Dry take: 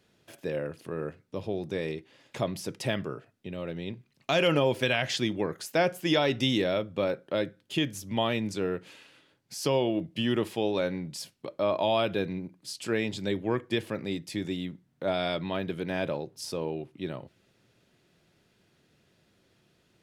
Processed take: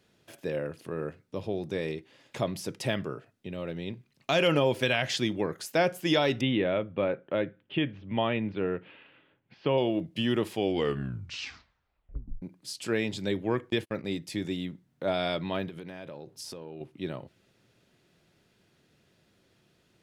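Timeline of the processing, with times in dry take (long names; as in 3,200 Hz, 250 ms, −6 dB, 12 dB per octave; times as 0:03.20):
0:06.41–0:09.78: Butterworth low-pass 3,100 Hz
0:10.51: tape stop 1.91 s
0:13.70–0:14.21: noise gate −40 dBFS, range −42 dB
0:15.68–0:16.81: downward compressor 10 to 1, threshold −37 dBFS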